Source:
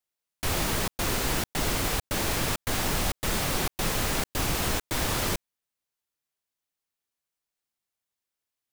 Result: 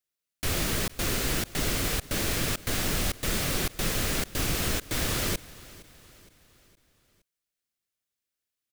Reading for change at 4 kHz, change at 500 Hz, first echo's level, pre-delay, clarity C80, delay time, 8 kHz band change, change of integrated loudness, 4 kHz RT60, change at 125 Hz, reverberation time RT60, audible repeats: 0.0 dB, -1.5 dB, -20.0 dB, none, none, 0.465 s, 0.0 dB, -0.5 dB, none, 0.0 dB, none, 3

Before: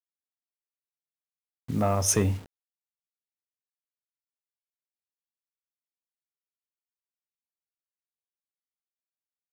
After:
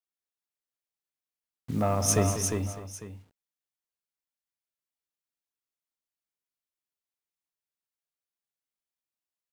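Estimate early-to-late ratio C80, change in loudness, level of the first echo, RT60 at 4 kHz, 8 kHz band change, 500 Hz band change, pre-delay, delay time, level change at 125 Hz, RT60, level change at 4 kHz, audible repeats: none, -1.5 dB, -10.5 dB, none, 0.0 dB, +0.5 dB, none, 0.195 s, 0.0 dB, none, 0.0 dB, 5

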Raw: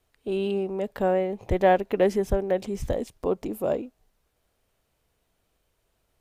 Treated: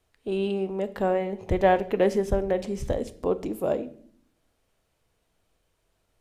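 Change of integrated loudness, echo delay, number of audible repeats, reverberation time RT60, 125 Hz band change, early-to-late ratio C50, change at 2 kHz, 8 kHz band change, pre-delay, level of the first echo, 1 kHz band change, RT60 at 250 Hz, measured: -0.5 dB, none, none, 0.60 s, +0.5 dB, 16.0 dB, 0.0 dB, 0.0 dB, 6 ms, none, -0.5 dB, 0.95 s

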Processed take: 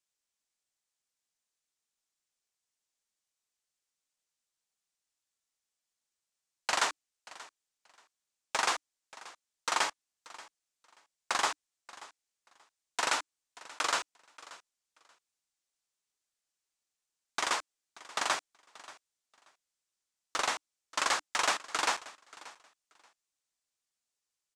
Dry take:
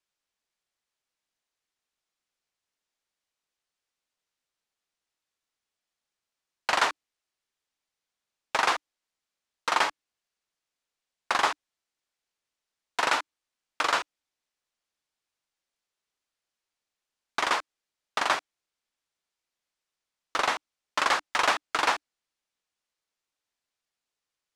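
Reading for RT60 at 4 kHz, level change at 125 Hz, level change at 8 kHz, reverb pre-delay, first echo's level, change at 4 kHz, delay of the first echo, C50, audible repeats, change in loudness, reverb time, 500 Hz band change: none, n/a, +2.5 dB, none, -19.5 dB, -3.0 dB, 0.582 s, none, 2, -4.5 dB, none, -6.5 dB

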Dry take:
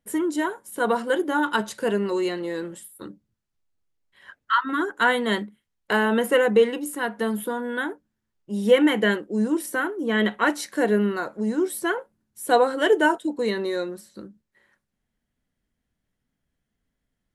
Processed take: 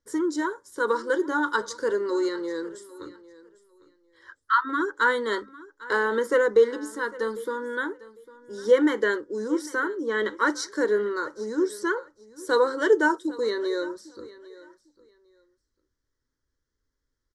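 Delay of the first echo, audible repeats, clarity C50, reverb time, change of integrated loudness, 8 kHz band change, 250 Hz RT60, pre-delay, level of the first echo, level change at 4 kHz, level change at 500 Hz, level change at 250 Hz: 0.801 s, 2, none, none, -2.0 dB, -4.0 dB, none, none, -19.5 dB, -6.0 dB, -1.0 dB, -4.5 dB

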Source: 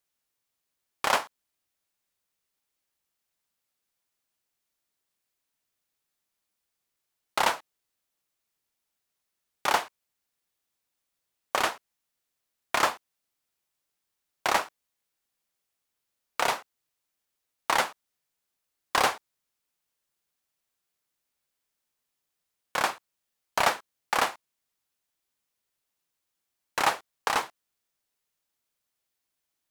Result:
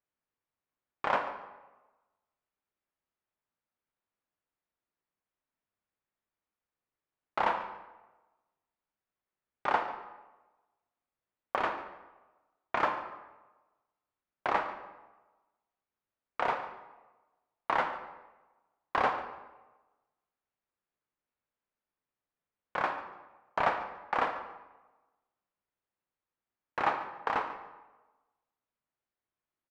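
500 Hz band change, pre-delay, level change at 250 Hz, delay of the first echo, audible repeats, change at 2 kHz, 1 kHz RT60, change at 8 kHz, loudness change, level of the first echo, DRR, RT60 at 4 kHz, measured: -2.5 dB, 12 ms, -2.0 dB, 0.143 s, 1, -5.5 dB, 1.1 s, under -25 dB, -5.0 dB, -16.5 dB, 6.0 dB, 0.75 s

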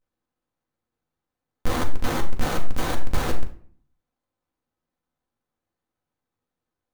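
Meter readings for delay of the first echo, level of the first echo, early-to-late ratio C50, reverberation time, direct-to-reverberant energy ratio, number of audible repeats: none, none, 10.5 dB, 0.50 s, 2.0 dB, none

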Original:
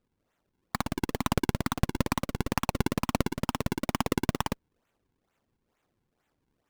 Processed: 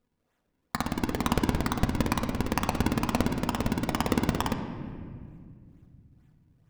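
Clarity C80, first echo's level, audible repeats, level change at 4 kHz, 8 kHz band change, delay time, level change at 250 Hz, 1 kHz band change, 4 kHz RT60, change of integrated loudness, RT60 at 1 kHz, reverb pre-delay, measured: 8.5 dB, none, none, +1.0 dB, 0.0 dB, none, +3.0 dB, +1.5 dB, 1.3 s, +1.5 dB, 1.8 s, 4 ms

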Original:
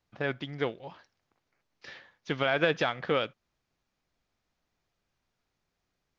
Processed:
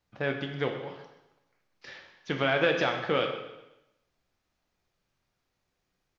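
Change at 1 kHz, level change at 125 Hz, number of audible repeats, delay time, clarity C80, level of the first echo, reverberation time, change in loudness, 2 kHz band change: +1.5 dB, +1.5 dB, 3, 0.127 s, 8.0 dB, -14.5 dB, 0.95 s, +1.0 dB, +1.5 dB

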